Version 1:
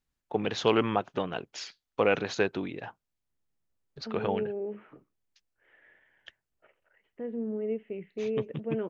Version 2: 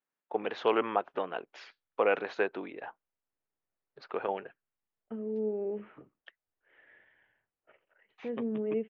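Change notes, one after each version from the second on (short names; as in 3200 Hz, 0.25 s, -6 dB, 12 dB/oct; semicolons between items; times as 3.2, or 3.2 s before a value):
first voice: add BPF 410–2100 Hz; second voice: entry +1.05 s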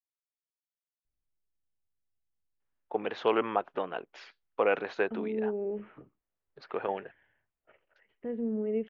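first voice: entry +2.60 s; master: add low shelf 93 Hz +11.5 dB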